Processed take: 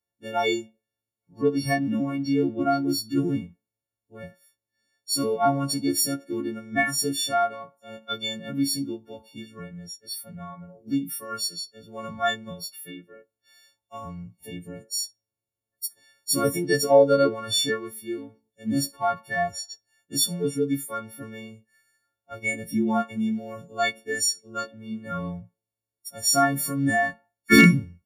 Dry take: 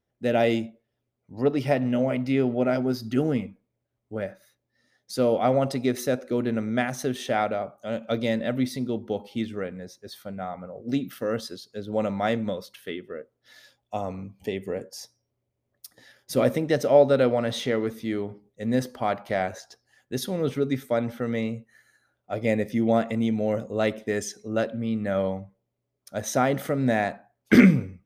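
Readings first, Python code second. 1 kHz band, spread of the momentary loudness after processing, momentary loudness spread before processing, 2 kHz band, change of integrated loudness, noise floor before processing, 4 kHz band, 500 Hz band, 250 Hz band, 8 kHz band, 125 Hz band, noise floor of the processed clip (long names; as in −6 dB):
+2.5 dB, 19 LU, 14 LU, +5.0 dB, +1.0 dB, −80 dBFS, +9.0 dB, −2.5 dB, −1.0 dB, +11.0 dB, −1.5 dB, below −85 dBFS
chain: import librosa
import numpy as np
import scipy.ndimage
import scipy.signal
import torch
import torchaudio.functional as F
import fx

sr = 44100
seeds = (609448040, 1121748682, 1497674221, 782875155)

y = fx.freq_snap(x, sr, grid_st=4)
y = fx.noise_reduce_blind(y, sr, reduce_db=14)
y = np.clip(10.0 ** (6.0 / 20.0) * y, -1.0, 1.0) / 10.0 ** (6.0 / 20.0)
y = y * 10.0 ** (1.0 / 20.0)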